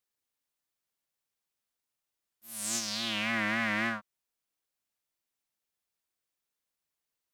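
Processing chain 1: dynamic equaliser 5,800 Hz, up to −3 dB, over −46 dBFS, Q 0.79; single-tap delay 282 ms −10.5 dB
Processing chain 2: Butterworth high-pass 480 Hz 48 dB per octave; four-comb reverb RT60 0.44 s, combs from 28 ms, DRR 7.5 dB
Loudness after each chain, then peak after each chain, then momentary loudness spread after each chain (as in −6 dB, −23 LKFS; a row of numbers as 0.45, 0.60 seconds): −31.5, −30.5 LKFS; −15.5, −15.0 dBFS; 14, 9 LU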